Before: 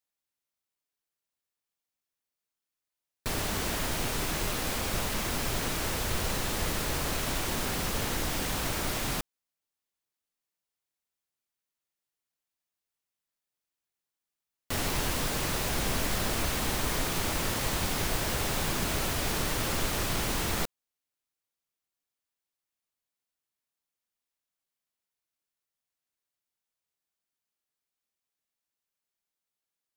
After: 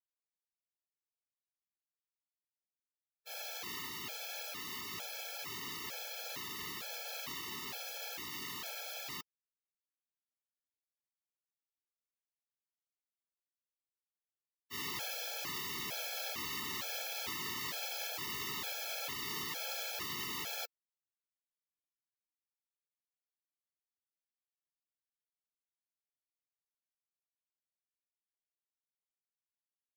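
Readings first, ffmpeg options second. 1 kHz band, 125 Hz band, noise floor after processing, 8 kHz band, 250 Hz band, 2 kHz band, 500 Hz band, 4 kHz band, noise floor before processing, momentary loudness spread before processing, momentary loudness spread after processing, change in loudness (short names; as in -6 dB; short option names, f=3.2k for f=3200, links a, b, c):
-11.5 dB, -23.0 dB, under -85 dBFS, -11.5 dB, -18.0 dB, -9.0 dB, -15.0 dB, -7.0 dB, under -85 dBFS, 2 LU, 4 LU, -9.5 dB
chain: -af "highpass=140,tiltshelf=f=880:g=-6.5,agate=range=-33dB:threshold=-18dB:ratio=3:detection=peak,equalizer=f=8.8k:t=o:w=0.53:g=-13,bandreject=f=1.5k:w=7.3,afftfilt=real='re*gt(sin(2*PI*1.1*pts/sr)*(1-2*mod(floor(b*sr/1024/440),2)),0)':imag='im*gt(sin(2*PI*1.1*pts/sr)*(1-2*mod(floor(b*sr/1024/440),2)),0)':win_size=1024:overlap=0.75,volume=5dB"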